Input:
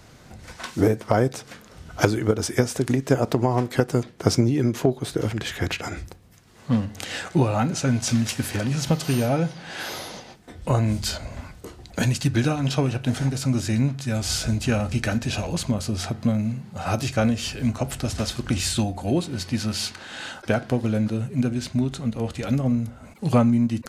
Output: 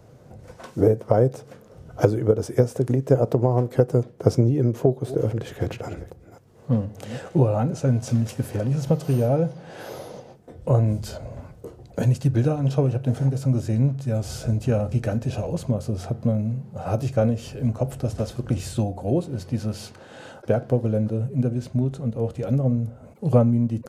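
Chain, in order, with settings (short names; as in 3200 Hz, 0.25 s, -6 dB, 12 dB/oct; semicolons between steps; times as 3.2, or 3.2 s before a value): 4.72–7.39 reverse delay 0.277 s, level -14 dB; graphic EQ 125/500/2000/4000/8000 Hz +10/+12/-5/-6/-3 dB; gain -7 dB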